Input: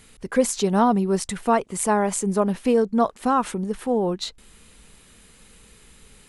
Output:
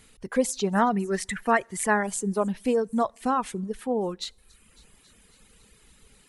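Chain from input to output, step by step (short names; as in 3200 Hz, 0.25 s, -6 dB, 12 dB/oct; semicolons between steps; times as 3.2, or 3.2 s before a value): 0.75–2.03 bell 1800 Hz +14 dB 0.55 oct; on a send: thin delay 0.276 s, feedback 69%, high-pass 4200 Hz, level -17.5 dB; on the sum: two-slope reverb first 0.61 s, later 2.6 s, DRR 17.5 dB; reverb removal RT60 0.85 s; gain -4 dB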